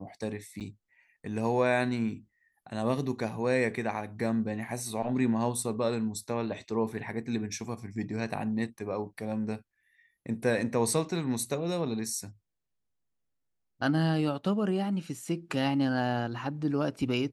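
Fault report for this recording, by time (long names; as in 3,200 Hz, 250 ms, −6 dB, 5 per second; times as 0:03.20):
0:00.60–0:00.61: drop-out 8.1 ms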